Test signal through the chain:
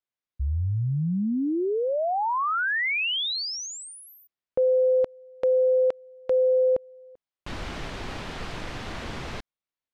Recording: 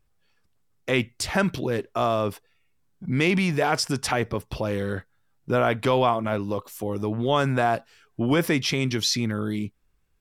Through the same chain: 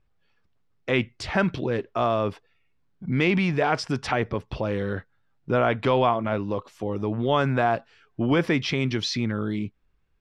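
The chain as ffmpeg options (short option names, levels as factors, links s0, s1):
-af "lowpass=3800"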